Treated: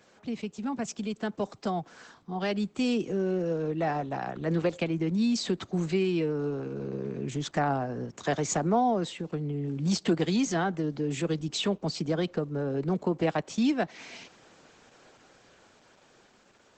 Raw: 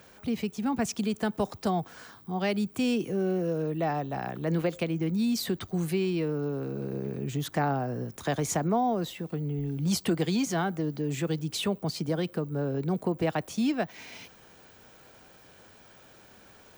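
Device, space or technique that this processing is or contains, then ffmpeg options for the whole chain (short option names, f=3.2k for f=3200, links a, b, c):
video call: -filter_complex "[0:a]asettb=1/sr,asplit=3[a][b][c];[a]atrim=end=9.904[d];[b]atrim=start=9.9:end=10.35,asetpts=PTS-STARTPTS,afade=t=in:d=0.004:c=qsin,afade=t=out:st=0.446:d=0.004:c=qsin,lowpass=7.6k[e];[c]atrim=start=10.346[f];[d][e]acrossfade=d=0.004:c1=hsin:c2=qsin[g];[g][f]acrossfade=d=0.004:c1=qsin:c2=hsin,highpass=150,dynaudnorm=f=1000:g=5:m=5dB,volume=-3dB" -ar 48000 -c:a libopus -b:a 12k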